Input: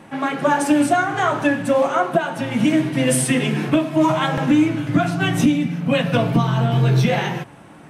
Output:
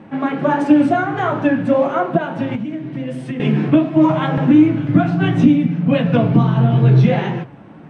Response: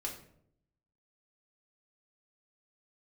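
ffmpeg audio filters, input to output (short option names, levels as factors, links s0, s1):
-filter_complex "[0:a]lowpass=3400,equalizer=f=200:w=0.41:g=8.5,asettb=1/sr,asplit=3[s0][s1][s2];[s0]atrim=end=2.554[s3];[s1]atrim=start=2.55:end=3.4,asetpts=PTS-STARTPTS,afade=t=in:d=0.004:c=qsin,afade=t=out:st=0.846:d=0.004:c=qsin,acompressor=threshold=0.0891:ratio=5[s4];[s2]atrim=start=3.396[s5];[s3][s4]acrossfade=d=0.004:c1=hsin:c2=qsin[s6];[s6][s5]acrossfade=d=0.004:c1=qsin:c2=hsin,flanger=delay=8.4:depth=7.9:regen=-67:speed=1.5:shape=triangular,volume=1.19"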